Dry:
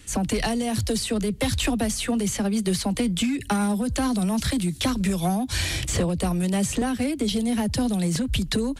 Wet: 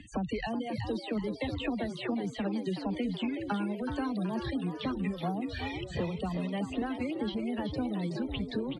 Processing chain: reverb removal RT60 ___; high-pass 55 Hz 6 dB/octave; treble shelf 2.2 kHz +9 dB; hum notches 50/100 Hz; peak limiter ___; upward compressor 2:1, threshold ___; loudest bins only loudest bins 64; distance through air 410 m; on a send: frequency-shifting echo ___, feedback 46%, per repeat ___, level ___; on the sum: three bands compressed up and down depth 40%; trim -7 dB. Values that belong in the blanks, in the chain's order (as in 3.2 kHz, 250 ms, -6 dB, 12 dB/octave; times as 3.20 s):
1.4 s, -13 dBFS, -40 dBFS, 374 ms, +86 Hz, -8 dB